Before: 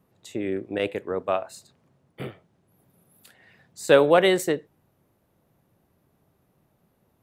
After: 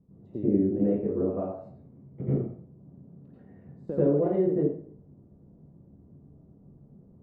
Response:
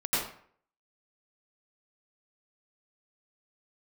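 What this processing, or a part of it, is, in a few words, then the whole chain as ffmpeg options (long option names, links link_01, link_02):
television next door: -filter_complex "[0:a]asettb=1/sr,asplit=3[link_01][link_02][link_03];[link_01]atrim=end=1.524[link_04];[link_02]atrim=start=1.52:end=2.21,asetpts=PTS-STARTPTS,afade=type=in:duration=0.004:curve=qsin,afade=type=out:start_time=0.686:duration=0.004:curve=qsin,equalizer=frequency=2200:width_type=o:width=0.22:gain=10[link_05];[link_03]atrim=start=2.206[link_06];[link_04][link_05]acrossfade=duration=0.004:curve1=hsin:curve2=qsin[link_07];[link_07][link_06]acrossfade=duration=0.004:curve1=qsin:curve2=hsin,acompressor=threshold=-33dB:ratio=3,lowpass=290[link_08];[1:a]atrim=start_sample=2205[link_09];[link_08][link_09]afir=irnorm=-1:irlink=0,volume=5.5dB"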